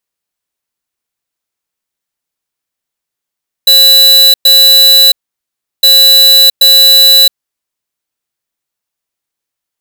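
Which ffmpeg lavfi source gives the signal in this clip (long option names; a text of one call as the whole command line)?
ffmpeg -f lavfi -i "aevalsrc='0.631*(2*lt(mod(3960*t,1),0.5)-1)*clip(min(mod(mod(t,2.16),0.78),0.67-mod(mod(t,2.16),0.78))/0.005,0,1)*lt(mod(t,2.16),1.56)':duration=4.32:sample_rate=44100" out.wav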